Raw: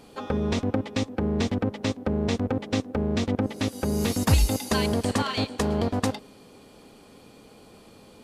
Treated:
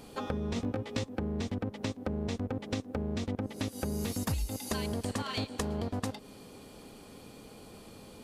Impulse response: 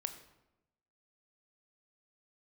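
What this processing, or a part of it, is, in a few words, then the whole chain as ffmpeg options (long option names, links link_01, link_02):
ASMR close-microphone chain: -filter_complex "[0:a]lowshelf=frequency=160:gain=4.5,acompressor=threshold=-30dB:ratio=6,highshelf=frequency=7900:gain=6,asettb=1/sr,asplit=3[link_01][link_02][link_03];[link_01]atrim=end=0.544[link_04];[link_02]atrim=start=0.54:end=1.04,asetpts=PTS-STARTPTS,afade=type=in:duration=0.004:curve=qsin,afade=type=out:start_time=0.496:duration=0.004:curve=qsin,asplit=2[link_05][link_06];[link_06]adelay=17,volume=-3dB[link_07];[link_05][link_07]amix=inputs=2:normalize=0,atrim=end_sample=22050[link_08];[link_03]atrim=start=1.036[link_09];[link_04][link_08]acrossfade=duration=0.004:curve1=hsin:curve2=qsin[link_10];[link_10][link_09]acrossfade=duration=0.004:curve1=qsin:curve2=hsin,volume=-1dB"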